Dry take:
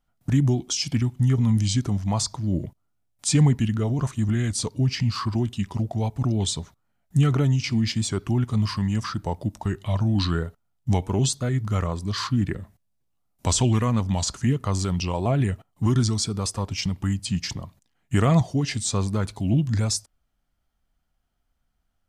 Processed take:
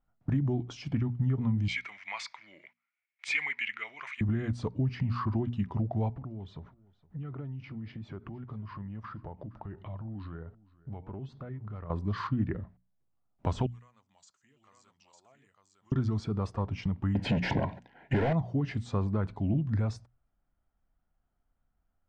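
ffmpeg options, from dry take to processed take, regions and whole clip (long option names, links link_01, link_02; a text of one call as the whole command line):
ffmpeg -i in.wav -filter_complex "[0:a]asettb=1/sr,asplit=3[link_01][link_02][link_03];[link_01]atrim=end=1.684[link_04];[link_02]atrim=start=1.68:end=4.21,asetpts=PTS-STARTPTS,afade=type=in:duration=0.004:curve=qsin,afade=type=out:start_time=2.526:duration=0.004:curve=qsin,highpass=frequency=2200:width_type=q:width=10,acontrast=57[link_05];[link_03]atrim=start=4.206[link_06];[link_04][link_05]acrossfade=duration=0.004:curve1=hsin:curve2=qsin[link_07];[link_07][link_06]acrossfade=duration=0.004:curve1=qsin:curve2=hsin,asettb=1/sr,asplit=3[link_08][link_09][link_10];[link_08]atrim=end=6.134[link_11];[link_09]atrim=start=6.13:end=11.9,asetpts=PTS-STARTPTS,afade=type=in:duration=0.004:curve=qsin,afade=type=out:start_time=5.766:duration=0.004:curve=qsin,lowpass=3900,acompressor=threshold=-35dB:ratio=6:attack=3.2:release=140:knee=1:detection=peak,aecho=1:1:466:0.0794,atrim=end_sample=254457[link_12];[link_10]atrim=start=11.896[link_13];[link_11][link_12]acrossfade=duration=0.004:curve1=hsin:curve2=qsin[link_14];[link_14][link_13]acrossfade=duration=0.004:curve1=qsin:curve2=hsin,asettb=1/sr,asplit=3[link_15][link_16][link_17];[link_15]atrim=end=13.664[link_18];[link_16]atrim=start=13.66:end=15.92,asetpts=PTS-STARTPTS,afade=type=in:duration=0.004:curve=qsin,afade=type=out:start_time=2.256:duration=0.004:curve=qsin,bandpass=frequency=7500:width_type=q:width=3.8,aecho=1:1:904:0.708,atrim=end_sample=99666[link_19];[link_17]atrim=start=15.916[link_20];[link_18][link_19]acrossfade=duration=0.004:curve1=hsin:curve2=qsin[link_21];[link_21][link_20]acrossfade=duration=0.004:curve1=qsin:curve2=hsin,asettb=1/sr,asplit=3[link_22][link_23][link_24];[link_22]atrim=end=17.154[link_25];[link_23]atrim=start=17.15:end=18.33,asetpts=PTS-STARTPTS,afade=type=in:duration=0.004:curve=qsin,afade=type=out:start_time=1.176:duration=0.004:curve=qsin,highshelf=frequency=4200:gain=-10.5,asplit=2[link_26][link_27];[link_27]highpass=frequency=720:poles=1,volume=35dB,asoftclip=type=tanh:threshold=-9.5dB[link_28];[link_26][link_28]amix=inputs=2:normalize=0,lowpass=frequency=5000:poles=1,volume=-6dB,asuperstop=centerf=1200:order=4:qfactor=2.7[link_29];[link_24]atrim=start=18.326[link_30];[link_25][link_29]acrossfade=duration=0.004:curve1=hsin:curve2=qsin[link_31];[link_31][link_30]acrossfade=duration=0.004:curve1=qsin:curve2=hsin,lowpass=1600,bandreject=frequency=60:width_type=h:width=6,bandreject=frequency=120:width_type=h:width=6,bandreject=frequency=180:width_type=h:width=6,bandreject=frequency=240:width_type=h:width=6,acompressor=threshold=-22dB:ratio=6,volume=-2.5dB" out.wav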